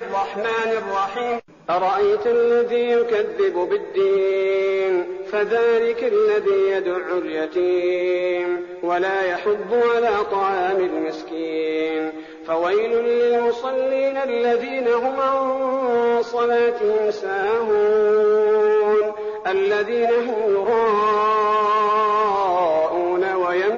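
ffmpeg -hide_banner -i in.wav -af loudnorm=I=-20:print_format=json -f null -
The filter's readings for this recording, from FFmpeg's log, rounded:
"input_i" : "-19.8",
"input_tp" : "-9.5",
"input_lra" : "2.7",
"input_thresh" : "-29.8",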